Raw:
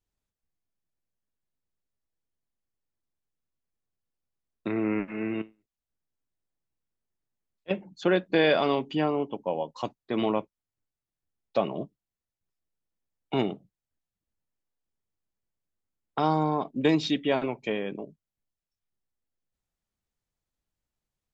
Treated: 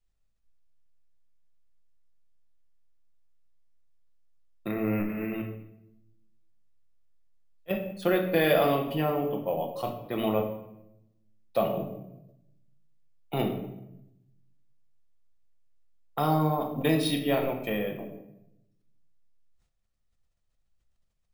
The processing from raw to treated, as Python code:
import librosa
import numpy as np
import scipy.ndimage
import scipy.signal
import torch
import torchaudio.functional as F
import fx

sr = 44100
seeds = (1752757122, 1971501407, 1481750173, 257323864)

y = fx.low_shelf(x, sr, hz=63.0, db=10.0)
y = y + 0.33 * np.pad(y, (int(1.6 * sr / 1000.0), 0))[:len(y)]
y = fx.room_shoebox(y, sr, seeds[0], volume_m3=260.0, walls='mixed', distance_m=0.81)
y = np.repeat(y[::3], 3)[:len(y)]
y = fx.sustainer(y, sr, db_per_s=110.0)
y = y * librosa.db_to_amplitude(-3.0)